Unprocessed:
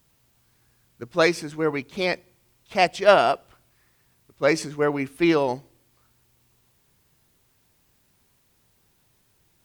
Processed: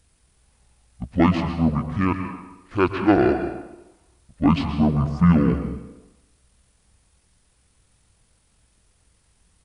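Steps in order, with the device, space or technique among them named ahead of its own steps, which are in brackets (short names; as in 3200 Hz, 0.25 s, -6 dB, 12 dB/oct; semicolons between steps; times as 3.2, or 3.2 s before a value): 2.14–3.18 bell 160 Hz -> 520 Hz -4.5 dB 1.9 oct; monster voice (pitch shift -11.5 st; low shelf 200 Hz +8 dB; reverb RT60 0.95 s, pre-delay 0.115 s, DRR 6.5 dB)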